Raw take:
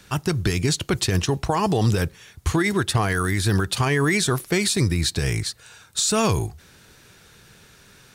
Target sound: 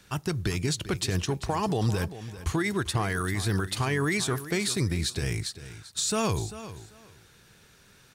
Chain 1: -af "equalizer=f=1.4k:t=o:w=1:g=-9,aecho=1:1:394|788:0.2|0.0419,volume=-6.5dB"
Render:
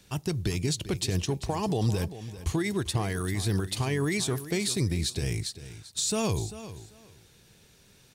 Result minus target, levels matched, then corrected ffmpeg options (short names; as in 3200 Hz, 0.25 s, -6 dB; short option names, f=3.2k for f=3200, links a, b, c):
1000 Hz band -3.5 dB
-af "aecho=1:1:394|788:0.2|0.0419,volume=-6.5dB"